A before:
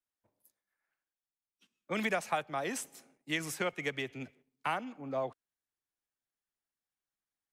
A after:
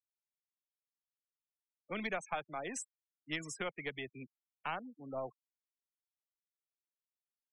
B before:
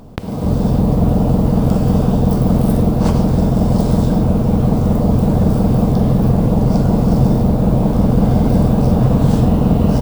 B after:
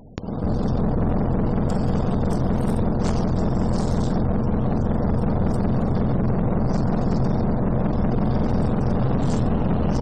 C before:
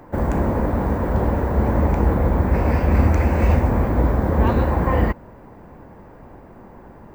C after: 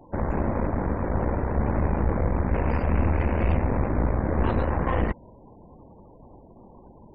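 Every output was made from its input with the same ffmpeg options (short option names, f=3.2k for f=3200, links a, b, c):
-af "aeval=exprs='(tanh(6.31*val(0)+0.75)-tanh(0.75))/6.31':c=same,afftfilt=real='re*gte(hypot(re,im),0.00708)':imag='im*gte(hypot(re,im),0.00708)':win_size=1024:overlap=0.75,lowpass=f=7.4k:t=q:w=2.2,volume=-1.5dB"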